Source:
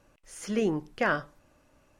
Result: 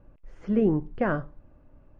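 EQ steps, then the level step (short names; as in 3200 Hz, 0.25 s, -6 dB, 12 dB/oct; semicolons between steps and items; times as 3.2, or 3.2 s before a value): air absorption 140 m; tilt -3 dB/oct; high shelf 3200 Hz -11.5 dB; 0.0 dB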